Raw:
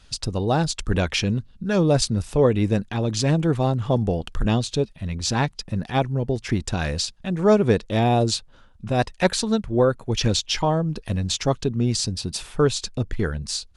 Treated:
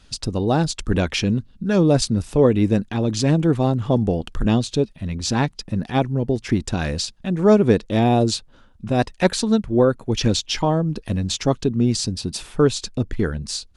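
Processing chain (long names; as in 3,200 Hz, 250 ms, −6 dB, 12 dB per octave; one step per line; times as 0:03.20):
parametric band 270 Hz +5.5 dB 1.2 octaves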